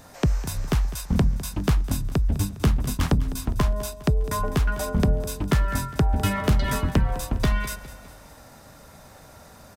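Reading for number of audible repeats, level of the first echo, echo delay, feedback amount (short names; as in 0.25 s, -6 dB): 4, -16.0 dB, 0.204 s, 50%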